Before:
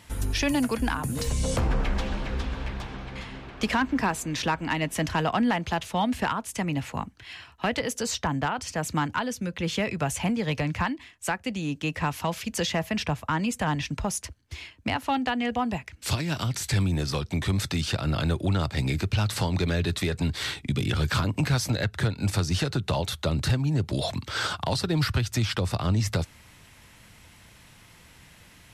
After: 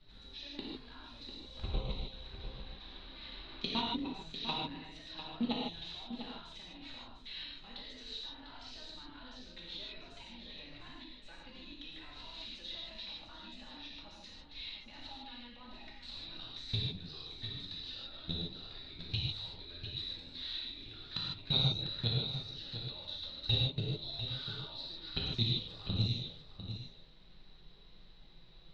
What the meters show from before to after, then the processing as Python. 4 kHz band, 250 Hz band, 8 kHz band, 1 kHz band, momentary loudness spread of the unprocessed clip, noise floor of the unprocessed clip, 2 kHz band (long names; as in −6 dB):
−3.5 dB, −16.5 dB, −30.5 dB, −19.0 dB, 6 LU, −53 dBFS, −19.5 dB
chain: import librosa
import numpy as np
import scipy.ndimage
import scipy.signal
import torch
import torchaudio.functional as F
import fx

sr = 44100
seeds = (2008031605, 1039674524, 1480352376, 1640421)

y = fx.hum_notches(x, sr, base_hz=50, count=7)
y = fx.level_steps(y, sr, step_db=23)
y = fx.dmg_noise_colour(y, sr, seeds[0], colour='brown', level_db=-50.0)
y = fx.env_flanger(y, sr, rest_ms=10.9, full_db=-31.5)
y = fx.ladder_lowpass(y, sr, hz=4000.0, resonance_pct=90)
y = y + 10.0 ** (-10.0 / 20.0) * np.pad(y, (int(698 * sr / 1000.0), 0))[:len(y)]
y = fx.rev_gated(y, sr, seeds[1], gate_ms=180, shape='flat', drr_db=-4.0)
y = y * librosa.db_to_amplitude(3.5)